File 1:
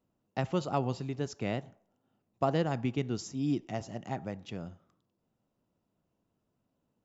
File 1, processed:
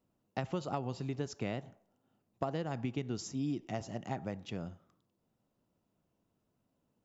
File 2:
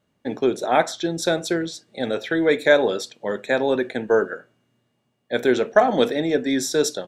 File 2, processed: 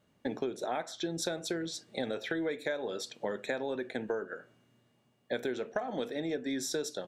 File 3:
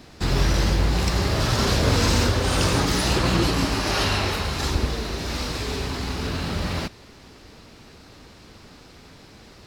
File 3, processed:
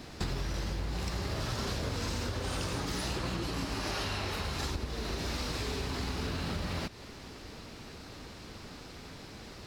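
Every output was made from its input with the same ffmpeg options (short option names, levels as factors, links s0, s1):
-af "acompressor=threshold=0.0282:ratio=12"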